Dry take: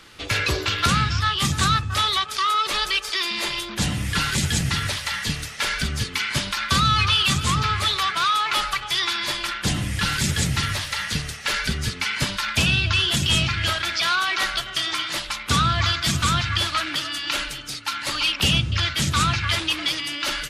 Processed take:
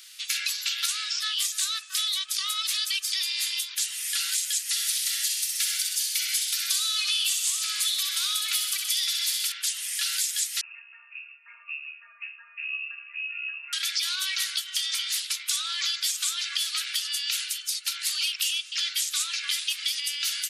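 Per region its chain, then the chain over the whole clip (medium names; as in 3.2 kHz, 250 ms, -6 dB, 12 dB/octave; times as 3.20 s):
4.69–9.52 s: treble shelf 5.5 kHz +7.5 dB + feedback echo behind a high-pass 63 ms, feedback 55%, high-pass 1.7 kHz, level -5 dB
10.61–13.73 s: inharmonic resonator 64 Hz, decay 0.51 s, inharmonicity 0.03 + frequency inversion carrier 2.7 kHz
whole clip: Bessel high-pass 2.1 kHz, order 4; differentiator; compression 4:1, threshold -33 dBFS; trim +8 dB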